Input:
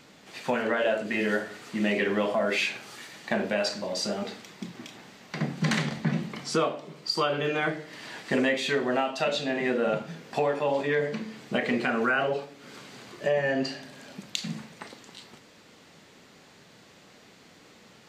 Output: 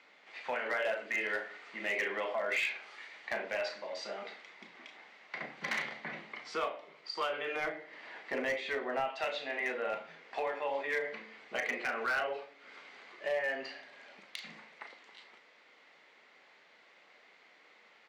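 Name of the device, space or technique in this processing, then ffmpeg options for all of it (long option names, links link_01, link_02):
megaphone: -filter_complex "[0:a]highpass=580,lowpass=3300,equalizer=frequency=2100:width_type=o:width=0.26:gain=8,asoftclip=type=hard:threshold=-21dB,asplit=2[link_01][link_02];[link_02]adelay=36,volume=-11dB[link_03];[link_01][link_03]amix=inputs=2:normalize=0,asettb=1/sr,asplit=3[link_04][link_05][link_06];[link_04]atrim=end=7.564[link_07];[link_05]atrim=start=7.56:end=9.1,asetpts=PTS-STARTPTS,afade=type=in:duration=0.004:curve=qsin,afade=type=out:start_time=1.536:duration=0.004:curve=qsin,tiltshelf=frequency=970:gain=4.5[link_08];[link_06]atrim=start=9.096[link_09];[link_07][link_08]acrossfade=duration=0.004:curve1=hsin:curve2=qsin[link_10];[link_10][link_09]acrossfade=duration=0.004:curve1=qsin:curve2=hsin,volume=-6dB"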